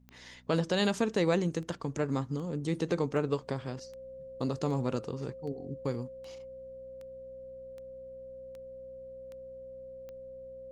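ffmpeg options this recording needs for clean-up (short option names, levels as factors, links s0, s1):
-af "adeclick=t=4,bandreject=f=62.1:t=h:w=4,bandreject=f=124.2:t=h:w=4,bandreject=f=186.3:t=h:w=4,bandreject=f=248.4:t=h:w=4,bandreject=f=530:w=30,agate=range=0.0891:threshold=0.0126"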